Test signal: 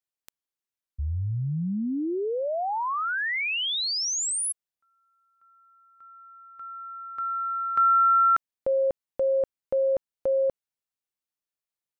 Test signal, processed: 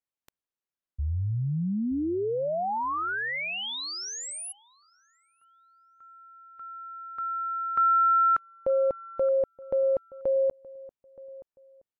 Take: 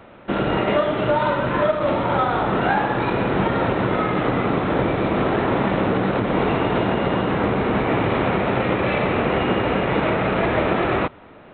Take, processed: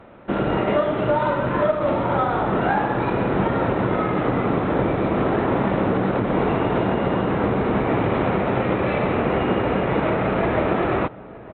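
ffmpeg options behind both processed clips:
-filter_complex "[0:a]highshelf=f=2.7k:g=-10,asplit=2[a][b];[b]adelay=923,lowpass=f=1.2k:p=1,volume=-19dB,asplit=2[c][d];[d]adelay=923,lowpass=f=1.2k:p=1,volume=0.27[e];[a][c][e]amix=inputs=3:normalize=0" -ar 44100 -c:a aac -b:a 96k

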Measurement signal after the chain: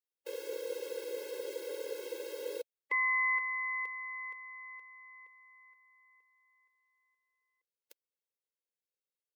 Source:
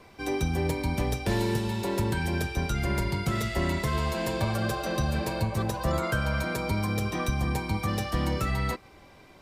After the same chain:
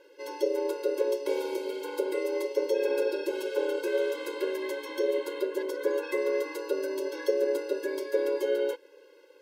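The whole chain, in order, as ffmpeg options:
-af "aeval=exprs='val(0)*sin(2*PI*490*n/s)':c=same,equalizer=f=125:t=o:w=1:g=8,equalizer=f=250:t=o:w=1:g=-9,equalizer=f=500:t=o:w=1:g=11,equalizer=f=1k:t=o:w=1:g=-11,equalizer=f=8k:t=o:w=1:g=-4,afftfilt=real='re*eq(mod(floor(b*sr/1024/280),2),1)':imag='im*eq(mod(floor(b*sr/1024/280),2),1)':win_size=1024:overlap=0.75,volume=1dB"

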